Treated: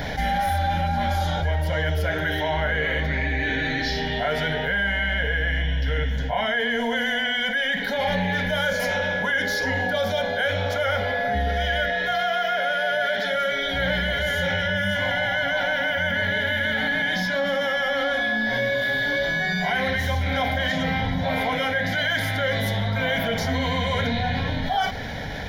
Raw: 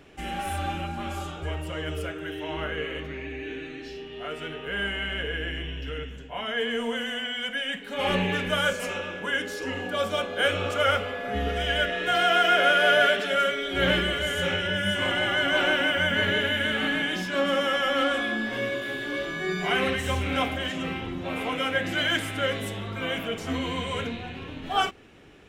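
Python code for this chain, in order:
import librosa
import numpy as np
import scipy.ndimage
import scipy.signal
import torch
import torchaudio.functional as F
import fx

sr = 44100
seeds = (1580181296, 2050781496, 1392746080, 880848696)

y = fx.rider(x, sr, range_db=10, speed_s=0.5)
y = fx.fixed_phaser(y, sr, hz=1800.0, stages=8)
y = fx.env_flatten(y, sr, amount_pct=70)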